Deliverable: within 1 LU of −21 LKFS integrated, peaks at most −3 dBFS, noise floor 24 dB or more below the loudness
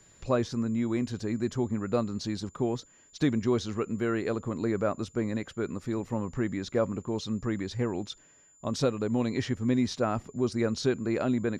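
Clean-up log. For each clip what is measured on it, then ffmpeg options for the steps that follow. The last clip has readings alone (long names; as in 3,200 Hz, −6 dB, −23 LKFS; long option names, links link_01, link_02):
interfering tone 7,100 Hz; level of the tone −58 dBFS; integrated loudness −30.5 LKFS; sample peak −14.0 dBFS; target loudness −21.0 LKFS
→ -af "bandreject=frequency=7100:width=30"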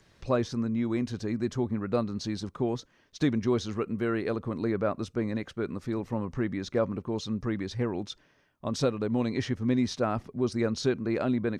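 interfering tone none found; integrated loudness −30.5 LKFS; sample peak −14.0 dBFS; target loudness −21.0 LKFS
→ -af "volume=9.5dB"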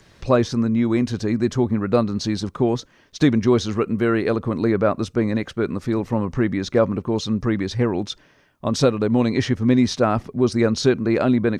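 integrated loudness −21.0 LKFS; sample peak −4.5 dBFS; background noise floor −55 dBFS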